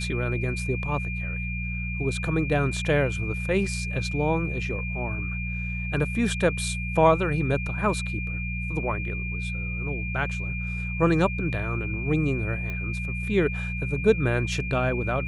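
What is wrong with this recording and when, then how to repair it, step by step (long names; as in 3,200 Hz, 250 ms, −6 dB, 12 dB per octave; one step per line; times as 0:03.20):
mains hum 60 Hz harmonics 3 −31 dBFS
whistle 2,400 Hz −33 dBFS
0:12.70: click −21 dBFS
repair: click removal
notch filter 2,400 Hz, Q 30
hum removal 60 Hz, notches 3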